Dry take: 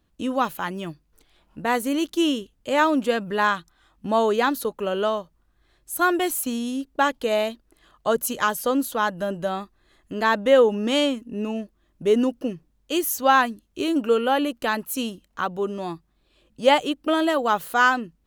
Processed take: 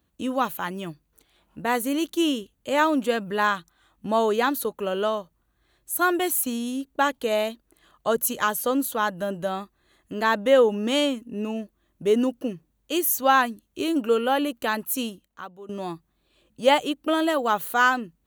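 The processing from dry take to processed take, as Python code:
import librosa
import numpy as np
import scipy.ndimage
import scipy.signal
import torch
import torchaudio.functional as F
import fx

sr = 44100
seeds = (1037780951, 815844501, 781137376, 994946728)

y = fx.edit(x, sr, fx.fade_out_to(start_s=15.04, length_s=0.65, curve='qua', floor_db=-16.0), tone=tone)
y = scipy.signal.sosfilt(scipy.signal.butter(2, 52.0, 'highpass', fs=sr, output='sos'), y)
y = fx.high_shelf(y, sr, hz=12000.0, db=9.5)
y = fx.notch(y, sr, hz=5100.0, q=8.4)
y = y * librosa.db_to_amplitude(-1.5)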